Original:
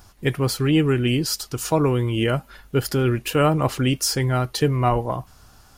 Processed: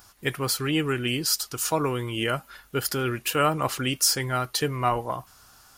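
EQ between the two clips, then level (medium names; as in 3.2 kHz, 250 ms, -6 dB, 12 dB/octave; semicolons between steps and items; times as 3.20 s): tilt EQ +2 dB/octave; peaking EQ 1.3 kHz +4 dB 0.85 oct; -4.0 dB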